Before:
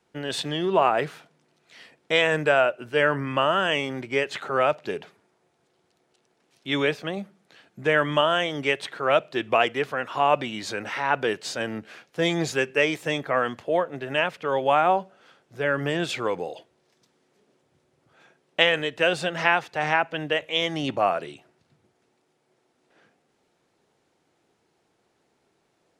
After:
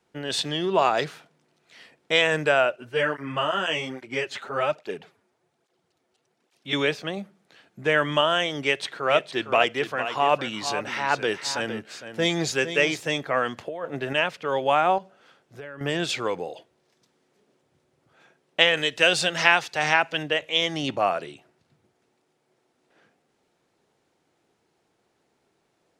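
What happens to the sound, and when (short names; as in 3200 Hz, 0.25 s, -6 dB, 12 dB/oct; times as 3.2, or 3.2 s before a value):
0.78–1.04 spectral gain 3300–7500 Hz +11 dB
2.76–6.73 tape flanging out of phase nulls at 1.2 Hz, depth 7.1 ms
8.61–13 echo 0.458 s -10 dB
13.57–14.13 negative-ratio compressor -29 dBFS
14.98–15.81 compressor, threshold -35 dBFS
18.77–20.23 high shelf 2500 Hz +8 dB
whole clip: dynamic EQ 5300 Hz, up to +6 dB, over -42 dBFS, Q 0.75; gain -1 dB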